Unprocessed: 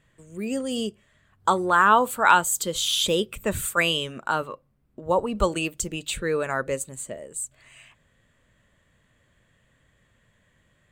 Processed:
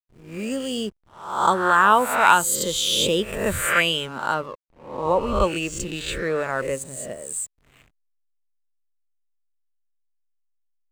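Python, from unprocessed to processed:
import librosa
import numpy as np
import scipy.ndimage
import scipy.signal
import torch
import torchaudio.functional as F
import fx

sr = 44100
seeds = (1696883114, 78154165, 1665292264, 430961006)

y = fx.spec_swells(x, sr, rise_s=0.7)
y = fx.high_shelf(y, sr, hz=7100.0, db=-10.0, at=(4.34, 6.82))
y = fx.backlash(y, sr, play_db=-38.5)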